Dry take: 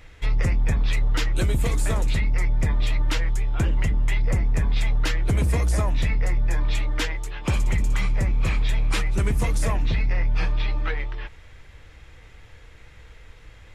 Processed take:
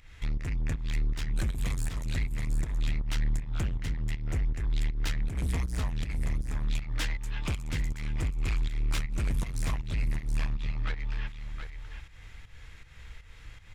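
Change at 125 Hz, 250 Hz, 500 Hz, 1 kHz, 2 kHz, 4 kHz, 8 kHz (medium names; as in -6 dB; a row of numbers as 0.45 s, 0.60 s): -7.5 dB, -8.0 dB, -13.5 dB, -11.0 dB, -9.0 dB, -8.0 dB, -7.5 dB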